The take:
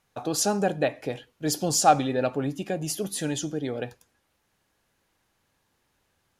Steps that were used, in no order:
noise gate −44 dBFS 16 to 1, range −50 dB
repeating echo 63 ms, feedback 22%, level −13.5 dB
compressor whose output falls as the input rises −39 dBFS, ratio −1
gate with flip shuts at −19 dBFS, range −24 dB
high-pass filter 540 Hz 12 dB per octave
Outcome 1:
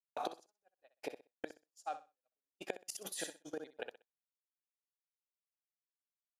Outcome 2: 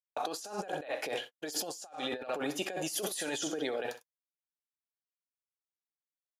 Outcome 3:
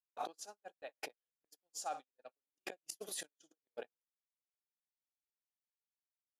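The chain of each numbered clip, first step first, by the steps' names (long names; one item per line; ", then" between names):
gate with flip, then high-pass filter, then noise gate, then repeating echo, then compressor whose output falls as the input rises
repeating echo, then noise gate, then high-pass filter, then compressor whose output falls as the input rises, then gate with flip
repeating echo, then gate with flip, then compressor whose output falls as the input rises, then high-pass filter, then noise gate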